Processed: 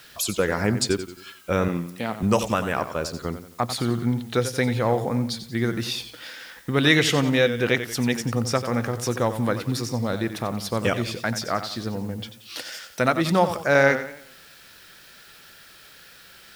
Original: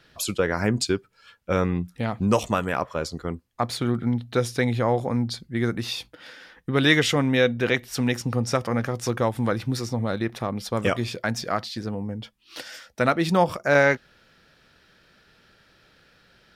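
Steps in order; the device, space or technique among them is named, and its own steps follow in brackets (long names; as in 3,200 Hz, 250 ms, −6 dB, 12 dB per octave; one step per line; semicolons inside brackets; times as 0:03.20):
noise-reduction cassette on a plain deck (one half of a high-frequency compander encoder only; tape wow and flutter 23 cents; white noise bed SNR 32 dB)
0:01.68–0:02.23: high-pass filter 200 Hz 12 dB per octave
high-shelf EQ 5,700 Hz +4 dB
feedback echo with a swinging delay time 90 ms, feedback 41%, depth 98 cents, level −11 dB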